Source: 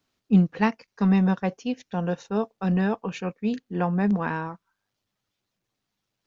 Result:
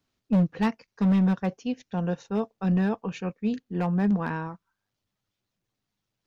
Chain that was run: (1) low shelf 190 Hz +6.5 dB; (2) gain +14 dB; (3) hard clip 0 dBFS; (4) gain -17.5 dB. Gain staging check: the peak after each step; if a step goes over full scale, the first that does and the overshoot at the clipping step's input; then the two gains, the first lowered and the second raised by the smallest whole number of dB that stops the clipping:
-6.0, +8.0, 0.0, -17.5 dBFS; step 2, 8.0 dB; step 2 +6 dB, step 4 -9.5 dB

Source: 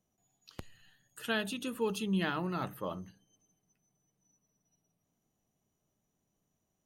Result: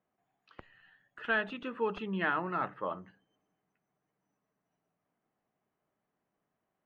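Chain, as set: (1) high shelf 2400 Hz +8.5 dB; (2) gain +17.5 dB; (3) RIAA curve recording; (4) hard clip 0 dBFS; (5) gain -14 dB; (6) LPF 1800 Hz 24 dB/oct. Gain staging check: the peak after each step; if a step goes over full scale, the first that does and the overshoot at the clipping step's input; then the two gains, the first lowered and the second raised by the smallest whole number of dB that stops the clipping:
-16.0, +1.5, +10.0, 0.0, -14.0, -17.0 dBFS; step 2, 10.0 dB; step 2 +7.5 dB, step 5 -4 dB

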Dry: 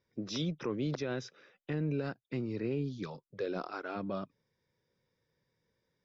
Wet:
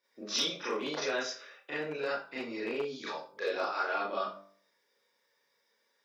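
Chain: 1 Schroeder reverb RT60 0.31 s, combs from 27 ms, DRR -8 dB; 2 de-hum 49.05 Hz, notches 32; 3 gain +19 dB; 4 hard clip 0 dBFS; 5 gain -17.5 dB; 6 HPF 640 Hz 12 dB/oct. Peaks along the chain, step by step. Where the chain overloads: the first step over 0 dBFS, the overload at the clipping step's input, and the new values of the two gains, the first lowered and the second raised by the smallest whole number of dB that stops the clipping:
-14.5, -15.0, +4.0, 0.0, -17.5, -18.5 dBFS; step 3, 4.0 dB; step 3 +15 dB, step 5 -13.5 dB

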